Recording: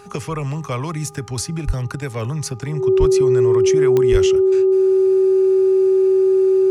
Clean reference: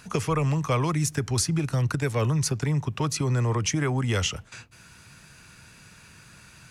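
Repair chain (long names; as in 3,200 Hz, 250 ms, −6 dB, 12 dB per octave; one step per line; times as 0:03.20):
click removal
hum removal 405.1 Hz, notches 3
notch filter 380 Hz, Q 30
high-pass at the plosives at 0:01.66/0:02.99/0:04.11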